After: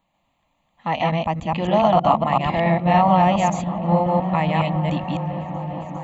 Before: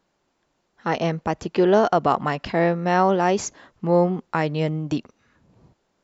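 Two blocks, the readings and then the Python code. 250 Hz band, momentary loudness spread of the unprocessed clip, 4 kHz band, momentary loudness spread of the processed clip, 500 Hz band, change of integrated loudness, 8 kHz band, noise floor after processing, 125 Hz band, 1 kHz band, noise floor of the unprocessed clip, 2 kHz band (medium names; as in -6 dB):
+2.5 dB, 10 LU, +3.5 dB, 11 LU, -0.5 dB, +2.0 dB, no reading, -70 dBFS, +5.5 dB, +5.0 dB, -72 dBFS, +0.5 dB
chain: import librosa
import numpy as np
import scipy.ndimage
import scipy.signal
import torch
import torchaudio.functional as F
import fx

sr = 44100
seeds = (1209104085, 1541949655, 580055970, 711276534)

p1 = fx.reverse_delay(x, sr, ms=140, wet_db=-0.5)
p2 = fx.fixed_phaser(p1, sr, hz=1500.0, stages=6)
p3 = p2 + fx.echo_opening(p2, sr, ms=404, hz=200, octaves=1, feedback_pct=70, wet_db=-6, dry=0)
y = p3 * 10.0 ** (3.0 / 20.0)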